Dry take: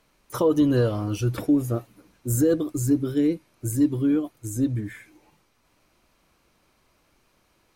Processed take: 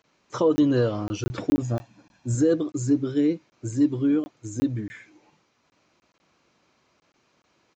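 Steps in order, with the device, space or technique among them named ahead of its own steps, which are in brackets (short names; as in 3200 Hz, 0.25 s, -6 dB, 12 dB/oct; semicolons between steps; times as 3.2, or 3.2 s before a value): call with lost packets (HPF 120 Hz 12 dB/oct; downsampling 16000 Hz; packet loss); 1.62–2.35 comb 1.2 ms, depth 66%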